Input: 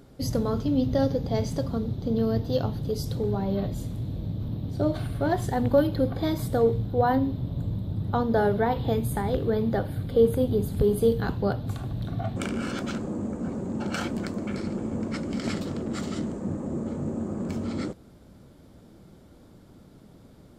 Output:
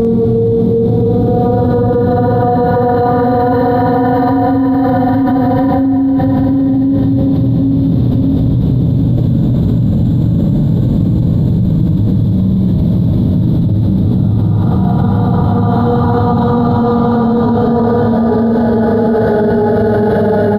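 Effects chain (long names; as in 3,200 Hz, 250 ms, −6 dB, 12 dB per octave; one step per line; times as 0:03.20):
parametric band 230 Hz +9.5 dB 2.5 octaves
extreme stretch with random phases 12×, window 0.50 s, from 0:06.75
double-tracking delay 48 ms −5.5 dB
on a send at −14.5 dB: convolution reverb RT60 0.65 s, pre-delay 4 ms
on the sum: boost into a limiter +16 dB
envelope flattener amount 100%
level −6 dB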